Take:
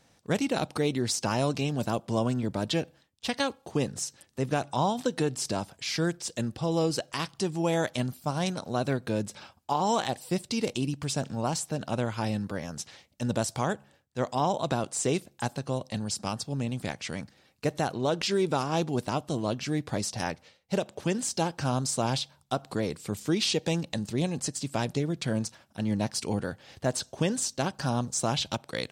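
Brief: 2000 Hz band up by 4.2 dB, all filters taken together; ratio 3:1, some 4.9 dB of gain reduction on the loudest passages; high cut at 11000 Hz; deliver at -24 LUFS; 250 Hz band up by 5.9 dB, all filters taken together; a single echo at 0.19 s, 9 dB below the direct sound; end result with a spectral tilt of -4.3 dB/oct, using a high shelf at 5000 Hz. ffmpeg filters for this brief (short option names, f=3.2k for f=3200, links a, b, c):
-af "lowpass=11k,equalizer=f=250:t=o:g=7.5,equalizer=f=2k:t=o:g=4.5,highshelf=f=5k:g=6,acompressor=threshold=-25dB:ratio=3,aecho=1:1:190:0.355,volume=5.5dB"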